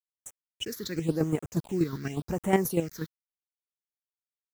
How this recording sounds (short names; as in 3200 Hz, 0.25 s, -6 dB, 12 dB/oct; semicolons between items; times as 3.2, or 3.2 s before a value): chopped level 8.3 Hz, depth 60%, duty 25%; a quantiser's noise floor 8-bit, dither none; phasing stages 6, 0.91 Hz, lowest notch 700–4500 Hz